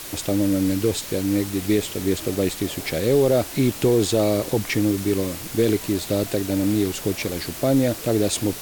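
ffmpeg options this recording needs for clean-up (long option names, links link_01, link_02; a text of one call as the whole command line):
ffmpeg -i in.wav -af "adeclick=threshold=4,afwtdn=0.018" out.wav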